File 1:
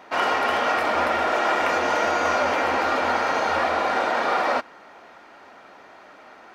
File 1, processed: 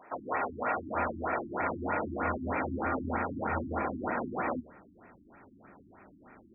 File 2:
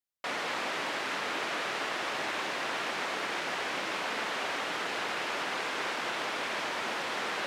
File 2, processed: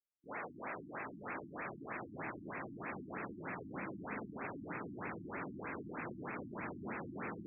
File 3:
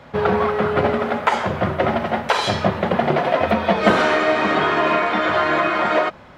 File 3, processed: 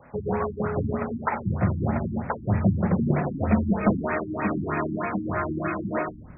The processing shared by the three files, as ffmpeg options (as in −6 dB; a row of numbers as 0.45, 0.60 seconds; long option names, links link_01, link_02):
-af "asubboost=boost=6.5:cutoff=240,bandreject=frequency=76.06:width_type=h:width=4,bandreject=frequency=152.12:width_type=h:width=4,bandreject=frequency=228.18:width_type=h:width=4,bandreject=frequency=304.24:width_type=h:width=4,bandreject=frequency=380.3:width_type=h:width=4,bandreject=frequency=456.36:width_type=h:width=4,bandreject=frequency=532.42:width_type=h:width=4,bandreject=frequency=608.48:width_type=h:width=4,bandreject=frequency=684.54:width_type=h:width=4,bandreject=frequency=760.6:width_type=h:width=4,afftfilt=real='re*lt(b*sr/1024,330*pow(2700/330,0.5+0.5*sin(2*PI*3.2*pts/sr)))':imag='im*lt(b*sr/1024,330*pow(2700/330,0.5+0.5*sin(2*PI*3.2*pts/sr)))':win_size=1024:overlap=0.75,volume=-7dB"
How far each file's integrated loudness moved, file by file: −11.5, −12.5, −7.5 LU